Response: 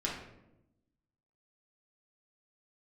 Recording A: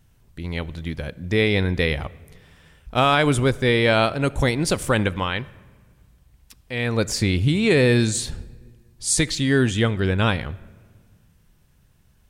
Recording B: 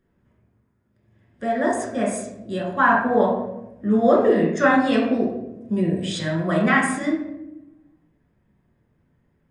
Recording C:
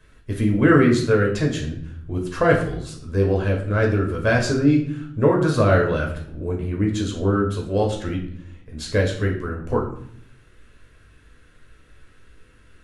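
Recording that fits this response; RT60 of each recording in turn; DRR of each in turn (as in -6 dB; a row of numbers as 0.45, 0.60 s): B; 1.7, 0.90, 0.65 s; 19.0, -4.0, -1.0 dB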